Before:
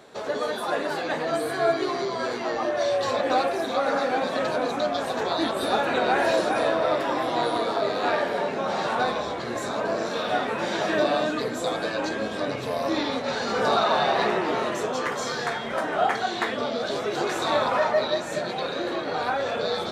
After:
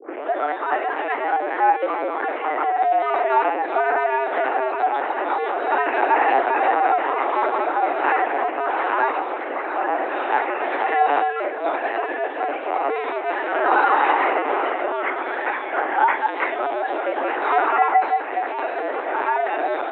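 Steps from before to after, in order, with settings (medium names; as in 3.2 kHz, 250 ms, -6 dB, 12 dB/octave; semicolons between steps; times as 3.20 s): tape start-up on the opening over 0.33 s; wow and flutter 24 cents; LPC vocoder at 8 kHz pitch kept; mistuned SSB +140 Hz 180–2600 Hz; trim +5.5 dB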